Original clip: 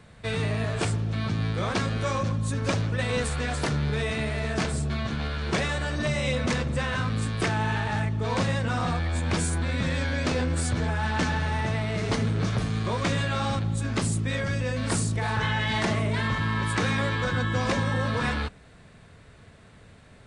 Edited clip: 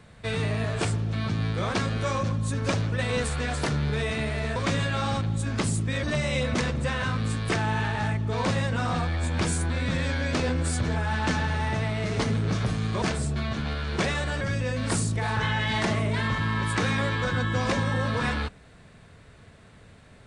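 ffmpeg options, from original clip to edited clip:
-filter_complex "[0:a]asplit=5[a][b][c][d][e];[a]atrim=end=4.562[f];[b]atrim=start=12.938:end=14.412[g];[c]atrim=start=5.948:end=12.942[h];[d]atrim=start=4.558:end=5.952[i];[e]atrim=start=14.408[j];[f][g]acrossfade=d=0.004:c1=hsin:c2=hsin[k];[k][h]acrossfade=d=0.004:c1=hsin:c2=hsin[l];[l][i]acrossfade=d=0.004:c1=hsin:c2=hsin[m];[m][j]acrossfade=d=0.004:c1=hsin:c2=hsin"

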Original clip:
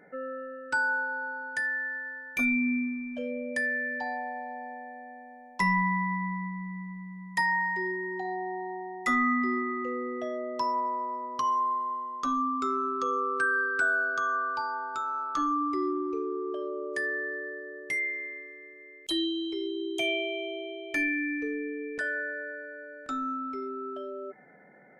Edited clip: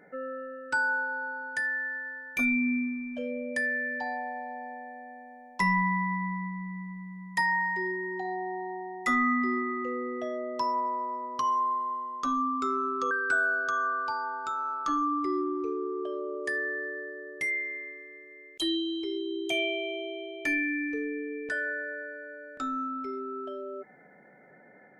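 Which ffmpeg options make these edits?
-filter_complex "[0:a]asplit=2[a][b];[a]atrim=end=13.112[c];[b]atrim=start=13.598[d];[c][d]acrossfade=d=0.004:c1=hsin:c2=hsin"

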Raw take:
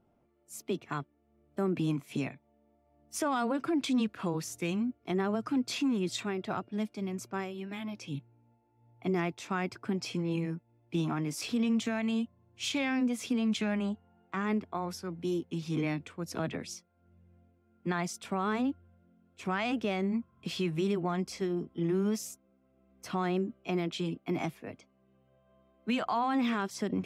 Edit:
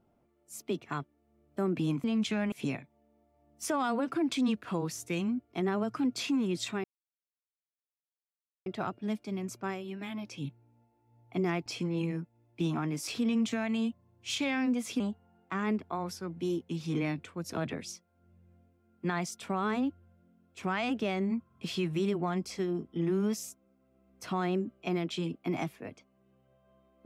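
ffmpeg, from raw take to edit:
-filter_complex "[0:a]asplit=6[a][b][c][d][e][f];[a]atrim=end=2.042[g];[b]atrim=start=13.338:end=13.822[h];[c]atrim=start=2.038:end=6.36,asetpts=PTS-STARTPTS,afade=t=out:st=4.318:d=0.004:c=hsin,apad=pad_dur=1.82[i];[d]atrim=start=6.36:end=9.362,asetpts=PTS-STARTPTS,afade=t=in:d=0.004:c=hsin[j];[e]atrim=start=9.998:end=13.342[k];[f]atrim=start=13.818[l];[g][h]acrossfade=d=0.004:c1=hsin:c2=hsin[m];[i][j]concat=n=2:v=0:a=1[n];[m][n]acrossfade=d=0.004:c1=hsin:c2=hsin[o];[o][k]acrossfade=d=0.004:c1=hsin:c2=hsin[p];[p][l]acrossfade=d=0.004:c1=hsin:c2=hsin"

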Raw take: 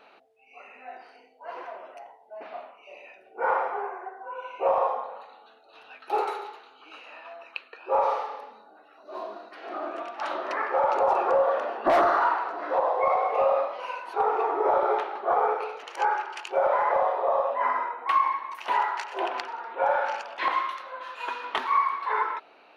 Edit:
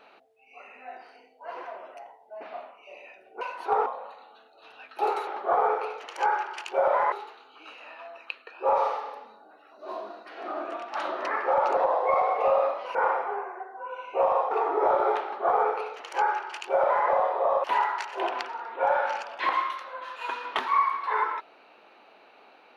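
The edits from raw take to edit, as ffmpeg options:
-filter_complex "[0:a]asplit=9[a][b][c][d][e][f][g][h][i];[a]atrim=end=3.412[j];[b]atrim=start=13.888:end=14.342[k];[c]atrim=start=4.968:end=6.382[l];[d]atrim=start=15.058:end=16.912[m];[e]atrim=start=6.378:end=11.032[n];[f]atrim=start=12.708:end=13.892[o];[g]atrim=start=3.408:end=4.972[p];[h]atrim=start=14.338:end=17.472[q];[i]atrim=start=18.628[r];[j][k]acrossfade=d=0.004:c1=hsin:c2=hsin[s];[s][l]acrossfade=d=0.004:c1=hsin:c2=hsin[t];[t][m]acrossfade=d=0.004:c1=hsin:c2=hsin[u];[u][n]acrossfade=d=0.004:c1=hsin:c2=hsin[v];[v][o]acrossfade=d=0.004:c1=hsin:c2=hsin[w];[w][p]acrossfade=d=0.004:c1=hsin:c2=hsin[x];[x][q]acrossfade=d=0.004:c1=hsin:c2=hsin[y];[y][r]acrossfade=d=0.004:c1=hsin:c2=hsin"

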